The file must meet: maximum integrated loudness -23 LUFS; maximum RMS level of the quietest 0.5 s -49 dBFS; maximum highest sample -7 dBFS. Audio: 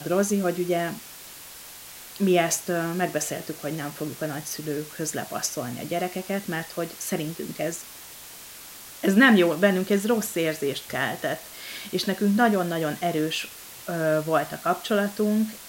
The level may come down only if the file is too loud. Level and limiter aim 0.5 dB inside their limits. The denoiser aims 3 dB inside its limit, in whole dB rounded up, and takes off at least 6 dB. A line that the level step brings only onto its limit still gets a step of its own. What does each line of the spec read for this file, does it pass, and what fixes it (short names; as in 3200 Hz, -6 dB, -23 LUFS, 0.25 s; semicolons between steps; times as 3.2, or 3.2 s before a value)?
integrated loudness -25.5 LUFS: OK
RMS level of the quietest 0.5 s -43 dBFS: fail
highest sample -5.5 dBFS: fail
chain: denoiser 9 dB, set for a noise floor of -43 dBFS; limiter -7.5 dBFS